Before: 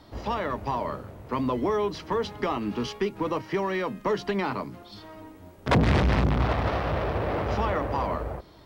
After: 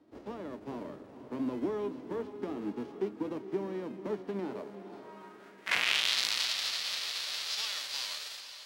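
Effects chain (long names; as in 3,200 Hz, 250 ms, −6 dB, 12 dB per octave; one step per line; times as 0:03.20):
spectral envelope flattened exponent 0.3
band-pass filter sweep 310 Hz → 4,300 Hz, 0:04.35–0:06.22
feedback delay with all-pass diffusion 471 ms, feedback 47%, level −11 dB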